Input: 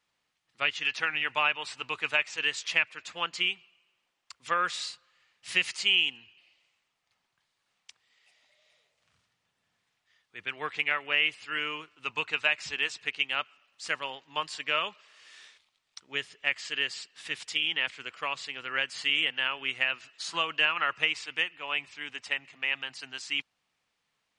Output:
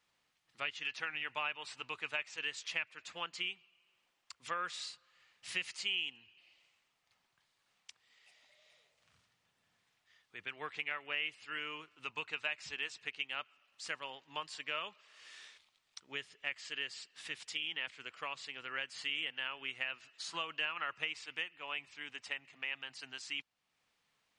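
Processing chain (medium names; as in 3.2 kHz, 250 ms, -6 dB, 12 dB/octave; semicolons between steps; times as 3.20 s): compression 1.5:1, threshold -54 dBFS, peak gain reduction 12.5 dB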